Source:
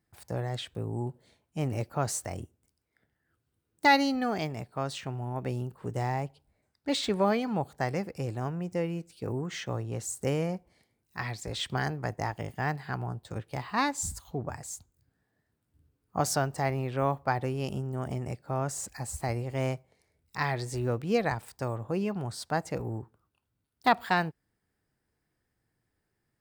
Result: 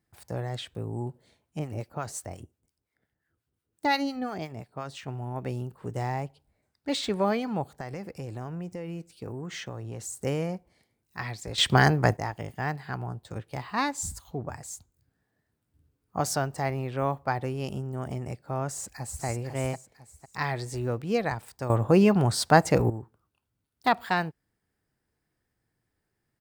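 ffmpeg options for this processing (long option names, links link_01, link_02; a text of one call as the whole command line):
ffmpeg -i in.wav -filter_complex "[0:a]asettb=1/sr,asplit=3[link_01][link_02][link_03];[link_01]atrim=end=1.594[link_04];[link_02]atrim=start=1.59:end=5.08,asetpts=PTS-STARTPTS,afade=type=in:duration=0.004:curve=qsin,afade=type=out:start_time=3.486:duration=0.004:curve=qsin,acrossover=split=850[link_05][link_06];[link_05]aeval=exprs='val(0)*(1-0.7/2+0.7/2*cos(2*PI*5.7*n/s))':channel_layout=same[link_07];[link_06]aeval=exprs='val(0)*(1-0.7/2-0.7/2*cos(2*PI*5.7*n/s))':channel_layout=same[link_08];[link_07][link_08]amix=inputs=2:normalize=0[link_09];[link_03]atrim=start=5.076[link_10];[link_04][link_09]acrossfade=duration=0.004:curve1=hsin:curve2=qsin[link_11];[link_11][link_10]acrossfade=duration=0.004:curve1=qsin:curve2=hsin,asettb=1/sr,asplit=3[link_12][link_13][link_14];[link_12]atrim=end=7.704[link_15];[link_13]atrim=start=7.7:end=10.16,asetpts=PTS-STARTPTS,afade=type=in:duration=0.004:curve=qsin,afade=type=out:start_time=2.456:duration=0.004:curve=qsin,acompressor=threshold=-32dB:ratio=10:attack=3.2:release=140:knee=1:detection=peak[link_16];[link_14]atrim=start=10.156[link_17];[link_15][link_16]acrossfade=duration=0.004:curve1=hsin:curve2=qsin[link_18];[link_18][link_17]acrossfade=duration=0.004:curve1=qsin:curve2=hsin,asplit=2[link_19][link_20];[link_20]afade=type=in:start_time=18.69:duration=0.01,afade=type=out:start_time=19.25:duration=0.01,aecho=0:1:500|1000|1500|2000:0.530884|0.159265|0.0477796|0.0143339[link_21];[link_19][link_21]amix=inputs=2:normalize=0,asplit=5[link_22][link_23][link_24][link_25][link_26];[link_22]atrim=end=11.582[link_27];[link_23]atrim=start=11.578:end=12.172,asetpts=PTS-STARTPTS,volume=11dB[link_28];[link_24]atrim=start=12.168:end=21.702[link_29];[link_25]atrim=start=21.698:end=22.902,asetpts=PTS-STARTPTS,volume=11.5dB[link_30];[link_26]atrim=start=22.898[link_31];[link_27][link_28]acrossfade=duration=0.004:curve1=hsin:curve2=hsin[link_32];[link_32][link_29]acrossfade=duration=0.004:curve1=hsin:curve2=hsin[link_33];[link_33][link_30]acrossfade=duration=0.004:curve1=hsin:curve2=hsin[link_34];[link_34][link_31]acrossfade=duration=0.004:curve1=hsin:curve2=hsin" out.wav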